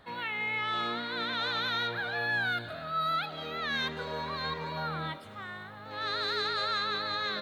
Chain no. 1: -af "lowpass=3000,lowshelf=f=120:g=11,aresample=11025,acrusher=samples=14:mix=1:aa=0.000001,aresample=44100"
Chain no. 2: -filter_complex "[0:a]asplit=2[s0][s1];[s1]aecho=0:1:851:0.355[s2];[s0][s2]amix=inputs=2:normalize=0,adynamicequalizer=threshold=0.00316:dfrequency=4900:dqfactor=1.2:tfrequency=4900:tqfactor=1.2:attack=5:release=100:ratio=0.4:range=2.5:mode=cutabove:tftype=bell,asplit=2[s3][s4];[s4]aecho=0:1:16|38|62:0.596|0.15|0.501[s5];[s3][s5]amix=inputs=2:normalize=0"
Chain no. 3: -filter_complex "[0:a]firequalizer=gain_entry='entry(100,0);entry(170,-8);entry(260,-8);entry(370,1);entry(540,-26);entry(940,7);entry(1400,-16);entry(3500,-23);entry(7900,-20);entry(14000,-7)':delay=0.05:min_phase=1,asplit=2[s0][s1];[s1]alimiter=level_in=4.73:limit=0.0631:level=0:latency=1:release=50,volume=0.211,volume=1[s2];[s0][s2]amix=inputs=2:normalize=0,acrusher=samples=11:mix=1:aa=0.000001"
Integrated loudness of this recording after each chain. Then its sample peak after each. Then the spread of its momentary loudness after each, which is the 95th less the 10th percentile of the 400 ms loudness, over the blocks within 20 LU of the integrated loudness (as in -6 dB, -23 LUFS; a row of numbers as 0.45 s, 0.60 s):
-35.0 LUFS, -30.5 LUFS, -36.0 LUFS; -21.0 dBFS, -17.0 dBFS, -24.0 dBFS; 6 LU, 7 LU, 8 LU